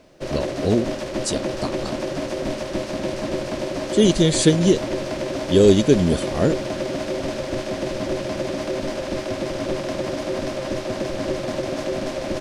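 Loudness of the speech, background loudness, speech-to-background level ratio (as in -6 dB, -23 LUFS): -19.5 LUFS, -27.0 LUFS, 7.5 dB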